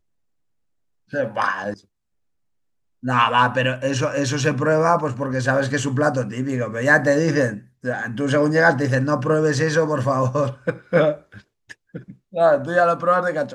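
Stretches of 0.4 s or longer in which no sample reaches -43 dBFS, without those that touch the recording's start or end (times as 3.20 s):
1.80–3.03 s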